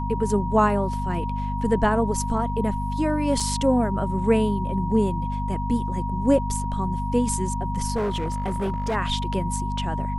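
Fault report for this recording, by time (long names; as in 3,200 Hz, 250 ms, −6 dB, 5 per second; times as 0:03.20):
mains hum 50 Hz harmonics 5 −28 dBFS
whistle 950 Hz −30 dBFS
0:03.40: drop-out 3.8 ms
0:07.95–0:08.96: clipping −21 dBFS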